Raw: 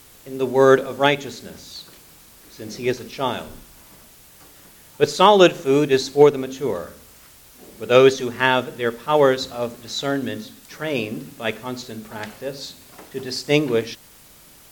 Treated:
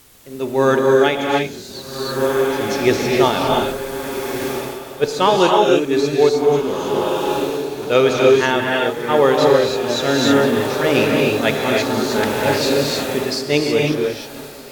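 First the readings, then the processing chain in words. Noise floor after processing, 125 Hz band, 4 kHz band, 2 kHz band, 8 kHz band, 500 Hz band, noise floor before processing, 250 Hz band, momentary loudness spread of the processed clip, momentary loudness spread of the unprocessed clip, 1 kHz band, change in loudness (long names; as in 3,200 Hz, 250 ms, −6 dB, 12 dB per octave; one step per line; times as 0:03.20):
−34 dBFS, +4.5 dB, +4.5 dB, +4.5 dB, +6.0 dB, +4.0 dB, −48 dBFS, +5.5 dB, 11 LU, 21 LU, +3.5 dB, +2.5 dB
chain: feedback delay with all-pass diffusion 1,576 ms, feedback 52%, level −13 dB
reverb whose tail is shaped and stops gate 340 ms rising, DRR −1 dB
automatic gain control gain up to 12.5 dB
level −1 dB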